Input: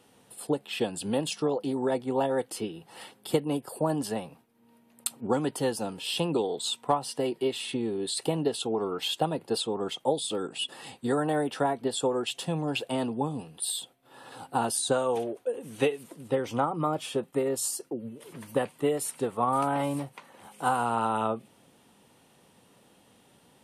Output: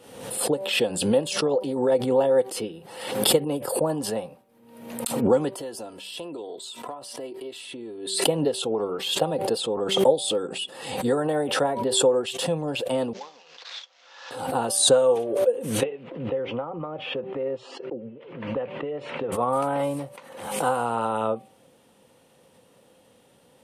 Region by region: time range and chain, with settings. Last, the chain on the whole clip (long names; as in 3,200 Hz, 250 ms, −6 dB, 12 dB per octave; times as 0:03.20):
0:05.55–0:08.27: low-shelf EQ 160 Hz −6.5 dB + comb filter 3 ms, depth 48% + downward compressor 3 to 1, threshold −38 dBFS
0:13.13–0:14.31: variable-slope delta modulation 32 kbit/s + high-pass filter 1,300 Hz + upward compression, threshold −53 dBFS
0:15.83–0:19.32: elliptic band-pass filter 120–2,800 Hz, stop band 60 dB + downward compressor 5 to 1, threshold −30 dBFS
whole clip: parametric band 520 Hz +10.5 dB 0.3 octaves; hum removal 193.3 Hz, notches 6; background raised ahead of every attack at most 62 dB per second